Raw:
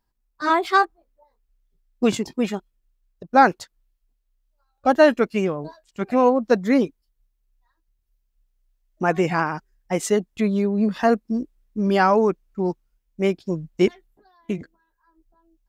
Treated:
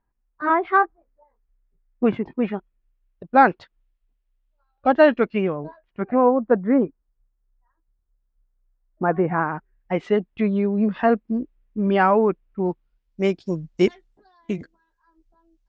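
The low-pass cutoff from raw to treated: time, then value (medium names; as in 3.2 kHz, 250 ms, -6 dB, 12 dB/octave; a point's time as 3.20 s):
low-pass 24 dB/octave
2.16 s 2.1 kHz
3.42 s 3.4 kHz
5.27 s 3.4 kHz
6.32 s 1.6 kHz
9.29 s 1.6 kHz
9.95 s 3 kHz
12.69 s 3 kHz
13.29 s 6.9 kHz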